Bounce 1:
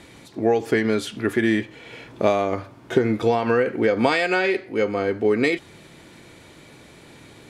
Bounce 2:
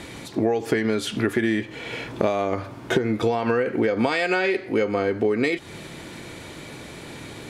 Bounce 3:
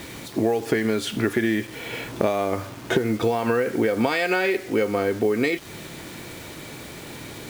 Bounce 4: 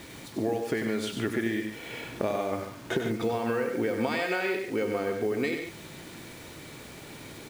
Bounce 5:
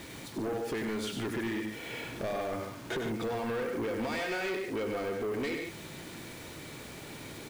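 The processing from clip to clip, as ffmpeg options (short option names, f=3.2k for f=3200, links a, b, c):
-af "acompressor=threshold=-27dB:ratio=6,volume=8dB"
-af "acrusher=bits=6:mix=0:aa=0.000001"
-af "equalizer=f=16k:w=3.5:g=-11.5,aecho=1:1:96.21|142.9:0.447|0.316,volume=-7.5dB"
-af "asoftclip=type=tanh:threshold=-29.5dB"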